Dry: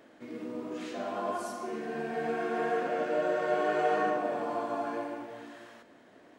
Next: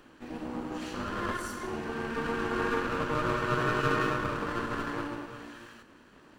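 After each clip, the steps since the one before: minimum comb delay 0.67 ms; gain +3 dB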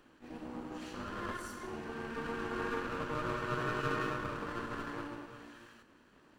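attack slew limiter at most 290 dB/s; gain -7 dB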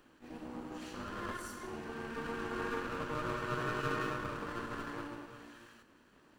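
high shelf 7300 Hz +4.5 dB; gain -1 dB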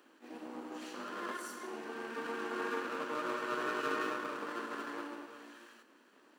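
HPF 250 Hz 24 dB/oct; gain +1 dB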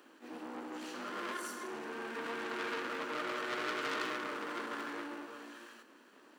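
core saturation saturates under 3500 Hz; gain +3.5 dB

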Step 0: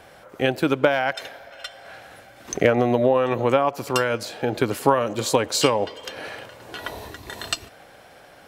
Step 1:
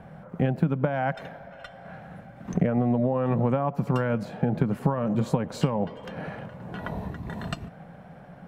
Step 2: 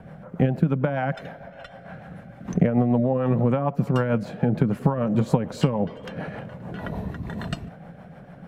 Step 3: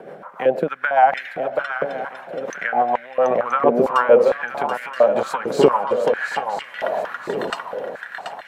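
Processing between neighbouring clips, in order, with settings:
EQ curve 110 Hz 0 dB, 170 Hz +14 dB, 330 Hz -9 dB, 750 Hz -6 dB, 1800 Hz -12 dB, 4700 Hz -25 dB; compressor 6:1, threshold -26 dBFS, peak gain reduction 11.5 dB; gain +6 dB
rotary speaker horn 6.7 Hz; gain +4.5 dB
swung echo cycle 0.976 s, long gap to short 3:1, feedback 39%, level -7 dB; stepped high-pass 4.4 Hz 400–2000 Hz; gain +5.5 dB

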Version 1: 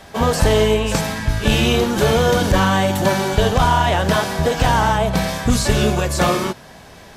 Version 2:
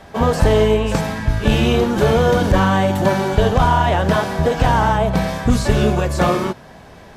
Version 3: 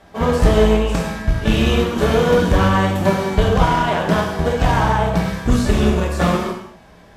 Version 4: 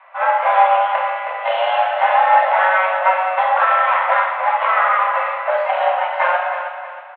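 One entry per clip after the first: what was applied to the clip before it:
high shelf 2600 Hz -9.5 dB; gain +1.5 dB
added harmonics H 5 -25 dB, 7 -20 dB, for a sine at -1 dBFS; non-linear reverb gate 0.27 s falling, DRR 0 dB; gain -3 dB
feedback echo 0.316 s, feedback 38%, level -9 dB; mistuned SSB +360 Hz 240–2400 Hz; gain +2.5 dB

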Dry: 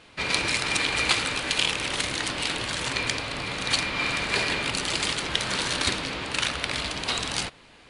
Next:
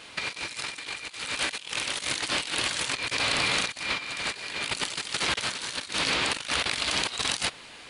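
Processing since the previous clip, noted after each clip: tilt +2 dB/oct; negative-ratio compressor -30 dBFS, ratio -0.5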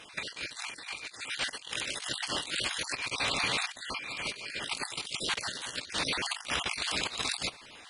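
random spectral dropouts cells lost 35%; gain -3 dB; AAC 96 kbps 44100 Hz

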